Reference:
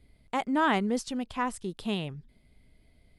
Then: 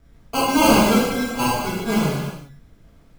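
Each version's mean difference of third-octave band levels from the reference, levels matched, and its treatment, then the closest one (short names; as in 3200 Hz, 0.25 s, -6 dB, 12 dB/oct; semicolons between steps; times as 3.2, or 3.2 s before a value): 15.5 dB: sample-and-hold 24×; non-linear reverb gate 0.42 s falling, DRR -7 dB; gain +3.5 dB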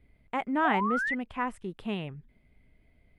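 3.5 dB: resonant high shelf 3300 Hz -10.5 dB, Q 1.5; painted sound rise, 0.64–1.15, 680–2100 Hz -28 dBFS; gain -2 dB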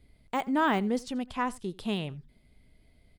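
1.5 dB: de-esser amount 95%; on a send: echo 85 ms -23 dB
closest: third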